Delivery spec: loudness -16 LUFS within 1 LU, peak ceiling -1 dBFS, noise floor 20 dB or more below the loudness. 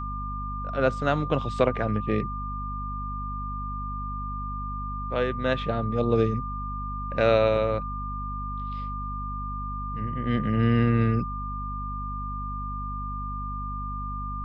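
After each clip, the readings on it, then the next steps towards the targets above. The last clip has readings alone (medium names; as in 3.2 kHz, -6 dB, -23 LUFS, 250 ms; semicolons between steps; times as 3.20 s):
hum 50 Hz; highest harmonic 250 Hz; hum level -32 dBFS; steady tone 1.2 kHz; tone level -33 dBFS; loudness -28.0 LUFS; peak level -7.5 dBFS; loudness target -16.0 LUFS
-> hum notches 50/100/150/200/250 Hz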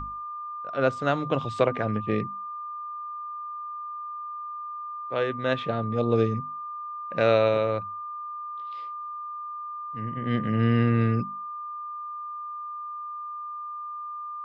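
hum not found; steady tone 1.2 kHz; tone level -33 dBFS
-> band-stop 1.2 kHz, Q 30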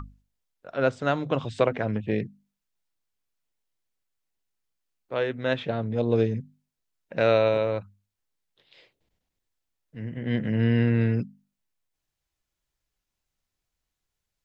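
steady tone not found; loudness -26.0 LUFS; peak level -7.5 dBFS; loudness target -16.0 LUFS
-> trim +10 dB; peak limiter -1 dBFS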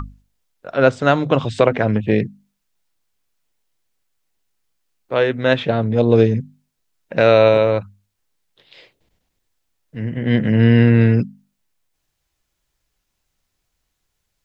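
loudness -16.5 LUFS; peak level -1.0 dBFS; noise floor -75 dBFS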